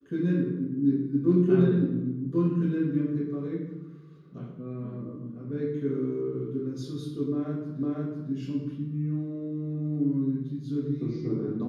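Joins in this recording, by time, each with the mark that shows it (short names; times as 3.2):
7.83 repeat of the last 0.5 s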